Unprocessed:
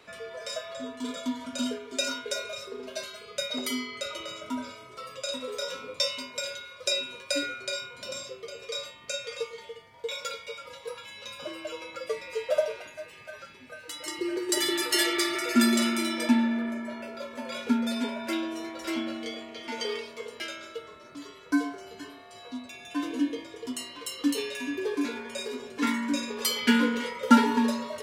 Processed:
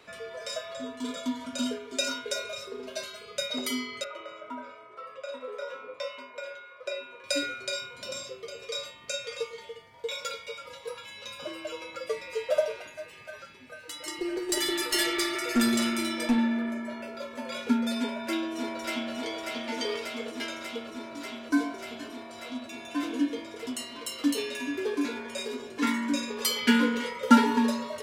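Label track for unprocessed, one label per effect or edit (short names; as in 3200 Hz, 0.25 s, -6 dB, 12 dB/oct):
4.040000	7.240000	three-band isolator lows -16 dB, under 360 Hz, highs -21 dB, over 2300 Hz
13.410000	16.380000	tube stage drive 16 dB, bias 0.35
17.990000	19.130000	echo throw 0.59 s, feedback 85%, level -4.5 dB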